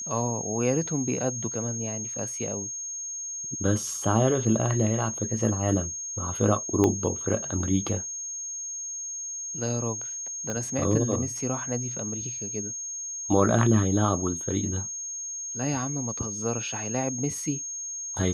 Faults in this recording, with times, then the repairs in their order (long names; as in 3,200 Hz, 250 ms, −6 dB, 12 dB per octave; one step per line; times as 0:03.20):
whistle 6,500 Hz −32 dBFS
0:06.84: click −11 dBFS
0:10.50: click −19 dBFS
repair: click removal
notch filter 6,500 Hz, Q 30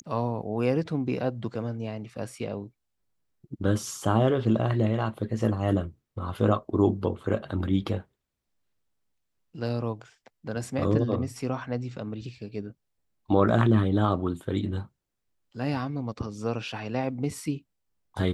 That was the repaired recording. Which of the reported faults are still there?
0:06.84: click
0:10.50: click